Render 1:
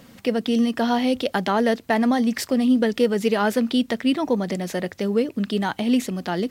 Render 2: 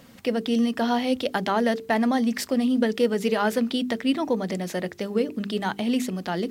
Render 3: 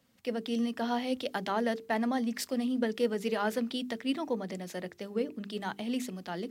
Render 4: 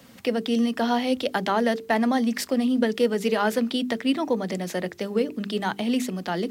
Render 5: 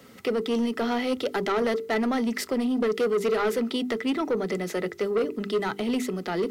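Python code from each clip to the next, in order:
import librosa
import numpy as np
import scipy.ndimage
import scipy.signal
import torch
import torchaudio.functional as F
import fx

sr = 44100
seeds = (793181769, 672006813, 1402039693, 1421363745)

y1 = fx.hum_notches(x, sr, base_hz=50, count=9)
y1 = y1 * 10.0 ** (-2.0 / 20.0)
y2 = fx.low_shelf(y1, sr, hz=87.0, db=-7.0)
y2 = fx.band_widen(y2, sr, depth_pct=40)
y2 = y2 * 10.0 ** (-7.5 / 20.0)
y3 = fx.band_squash(y2, sr, depth_pct=40)
y3 = y3 * 10.0 ** (8.0 / 20.0)
y4 = fx.small_body(y3, sr, hz=(410.0, 1300.0, 2000.0), ring_ms=40, db=12)
y4 = 10.0 ** (-17.5 / 20.0) * np.tanh(y4 / 10.0 ** (-17.5 / 20.0))
y4 = y4 * 10.0 ** (-2.0 / 20.0)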